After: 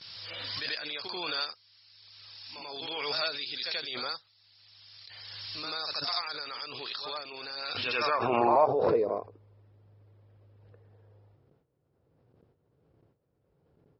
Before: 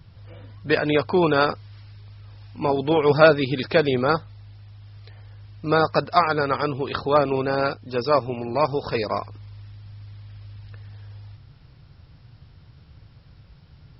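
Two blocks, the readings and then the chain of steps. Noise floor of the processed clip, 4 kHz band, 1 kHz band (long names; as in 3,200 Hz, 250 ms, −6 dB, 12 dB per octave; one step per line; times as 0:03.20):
−73 dBFS, +0.5 dB, −8.5 dB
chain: noise gate with hold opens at −38 dBFS
echo ahead of the sound 87 ms −14.5 dB
band-pass filter sweep 4,800 Hz → 440 Hz, 0:07.55–0:08.92
background raised ahead of every attack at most 22 dB per second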